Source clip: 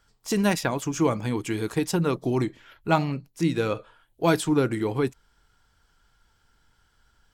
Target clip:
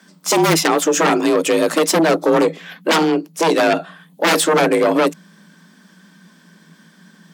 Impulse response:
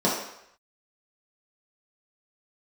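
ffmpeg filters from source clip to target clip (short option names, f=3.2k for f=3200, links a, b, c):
-af "aeval=exprs='0.398*(cos(1*acos(clip(val(0)/0.398,-1,1)))-cos(1*PI/2))+0.0126*(cos(8*acos(clip(val(0)/0.398,-1,1)))-cos(8*PI/2))':c=same,aeval=exprs='0.447*sin(PI/2*5.62*val(0)/0.447)':c=same,afreqshift=160,volume=-3.5dB"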